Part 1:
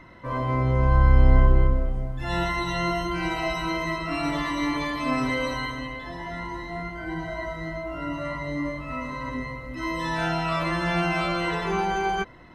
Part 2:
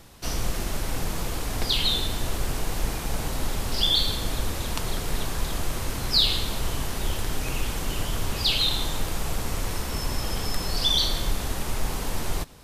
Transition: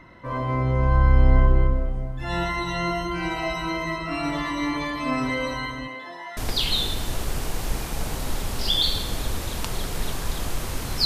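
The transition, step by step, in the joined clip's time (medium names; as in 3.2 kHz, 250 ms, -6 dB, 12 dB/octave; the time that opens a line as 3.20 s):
part 1
5.87–6.37 s: high-pass 180 Hz -> 860 Hz
6.37 s: go over to part 2 from 1.50 s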